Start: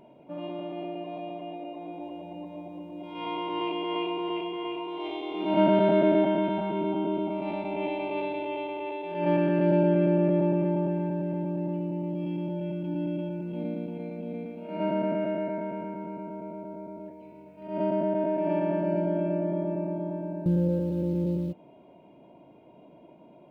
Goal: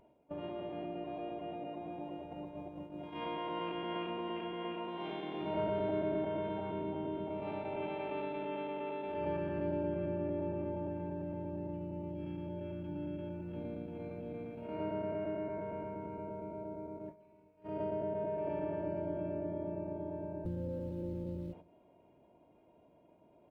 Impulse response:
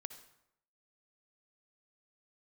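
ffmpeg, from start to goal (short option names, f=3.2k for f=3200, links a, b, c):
-filter_complex "[0:a]areverse,acompressor=mode=upward:threshold=-38dB:ratio=2.5,areverse,highshelf=f=2.1k:g=-4.5,agate=range=-17dB:threshold=-40dB:ratio=16:detection=peak,asplit=2[a][b];[1:a]atrim=start_sample=2205[c];[b][c]afir=irnorm=-1:irlink=0,volume=-6.5dB[d];[a][d]amix=inputs=2:normalize=0,asplit=3[e][f][g];[f]asetrate=22050,aresample=44100,atempo=2,volume=-6dB[h];[g]asetrate=29433,aresample=44100,atempo=1.49831,volume=-10dB[i];[e][h][i]amix=inputs=3:normalize=0,acompressor=threshold=-38dB:ratio=2,equalizer=f=150:w=0.69:g=-7,volume=-1.5dB"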